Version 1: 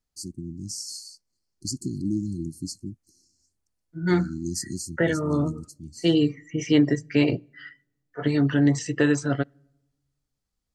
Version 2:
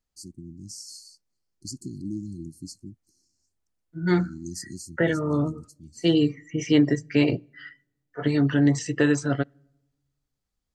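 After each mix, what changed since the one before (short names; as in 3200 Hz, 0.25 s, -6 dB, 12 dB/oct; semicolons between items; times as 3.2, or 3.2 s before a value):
first voice -6.0 dB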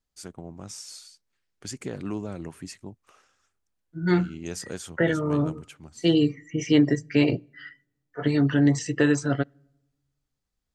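first voice: remove brick-wall FIR band-stop 370–4100 Hz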